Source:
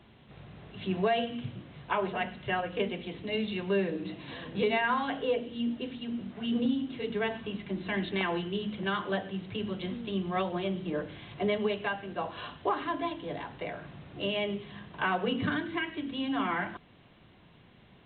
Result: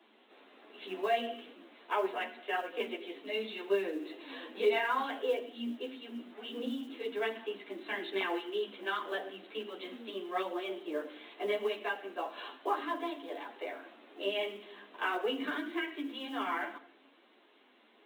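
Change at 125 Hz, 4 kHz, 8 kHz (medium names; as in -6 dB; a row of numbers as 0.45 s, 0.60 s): under -25 dB, -3.0 dB, no reading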